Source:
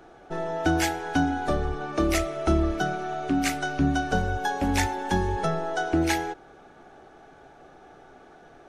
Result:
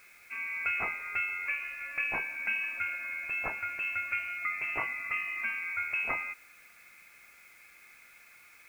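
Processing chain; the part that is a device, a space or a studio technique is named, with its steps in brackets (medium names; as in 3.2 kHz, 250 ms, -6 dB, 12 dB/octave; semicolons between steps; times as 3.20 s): scrambled radio voice (band-pass 360–2800 Hz; frequency inversion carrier 2.9 kHz; white noise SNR 27 dB); trim -5.5 dB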